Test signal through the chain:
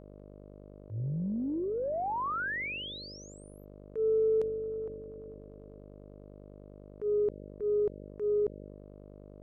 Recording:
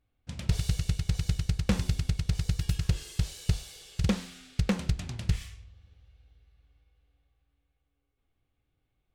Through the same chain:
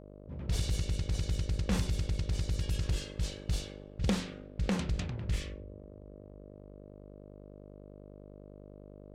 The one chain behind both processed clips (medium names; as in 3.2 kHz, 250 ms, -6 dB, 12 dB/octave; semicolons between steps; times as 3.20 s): level-controlled noise filter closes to 470 Hz, open at -22.5 dBFS; mains buzz 50 Hz, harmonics 12, -49 dBFS -1 dB/octave; transient shaper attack -9 dB, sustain +3 dB